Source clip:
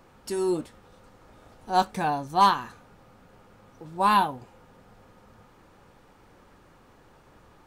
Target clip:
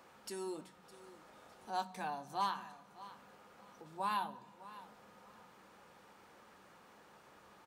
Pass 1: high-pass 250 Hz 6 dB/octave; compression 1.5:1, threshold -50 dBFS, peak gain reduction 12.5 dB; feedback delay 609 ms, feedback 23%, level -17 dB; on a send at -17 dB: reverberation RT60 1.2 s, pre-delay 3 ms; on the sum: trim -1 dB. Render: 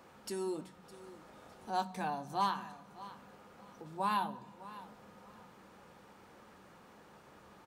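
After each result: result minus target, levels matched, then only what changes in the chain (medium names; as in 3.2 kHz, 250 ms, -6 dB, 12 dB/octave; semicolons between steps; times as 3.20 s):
250 Hz band +3.0 dB; compression: peak gain reduction -2 dB
change: high-pass 600 Hz 6 dB/octave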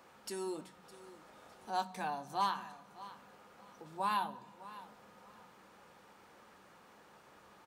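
compression: peak gain reduction -2.5 dB
change: compression 1.5:1, threshold -57.5 dBFS, peak gain reduction 14.5 dB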